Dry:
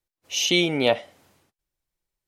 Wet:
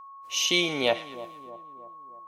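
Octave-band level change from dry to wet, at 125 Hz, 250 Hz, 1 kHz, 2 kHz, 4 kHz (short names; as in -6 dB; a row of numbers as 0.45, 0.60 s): -8.5, -6.0, -0.5, -2.0, -2.0 dB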